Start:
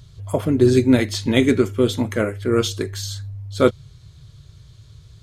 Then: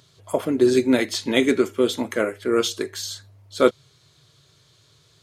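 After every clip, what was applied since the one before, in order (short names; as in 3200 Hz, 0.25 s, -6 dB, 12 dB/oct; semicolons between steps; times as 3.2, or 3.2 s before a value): HPF 290 Hz 12 dB/oct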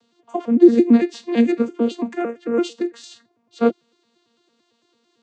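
arpeggiated vocoder bare fifth, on A#3, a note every 0.112 s; gain +4 dB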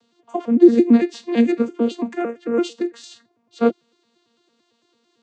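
nothing audible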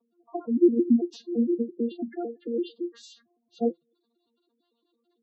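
spectral gate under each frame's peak -10 dB strong; flange 0.57 Hz, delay 5.2 ms, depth 2.6 ms, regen +66%; gain -2.5 dB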